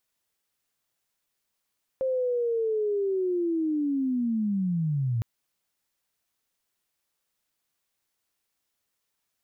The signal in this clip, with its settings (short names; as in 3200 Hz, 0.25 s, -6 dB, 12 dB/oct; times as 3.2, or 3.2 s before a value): chirp linear 530 Hz -> 110 Hz -23.5 dBFS -> -23.5 dBFS 3.21 s